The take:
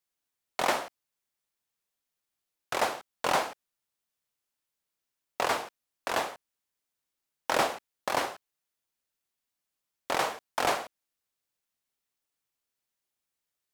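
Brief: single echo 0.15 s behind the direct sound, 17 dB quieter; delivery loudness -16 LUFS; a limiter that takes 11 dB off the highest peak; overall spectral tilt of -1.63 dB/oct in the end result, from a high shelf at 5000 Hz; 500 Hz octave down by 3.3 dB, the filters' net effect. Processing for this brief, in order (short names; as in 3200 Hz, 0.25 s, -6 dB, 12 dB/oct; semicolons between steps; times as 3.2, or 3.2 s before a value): bell 500 Hz -4.5 dB; high shelf 5000 Hz +8.5 dB; limiter -20 dBFS; echo 0.15 s -17 dB; gain +19 dB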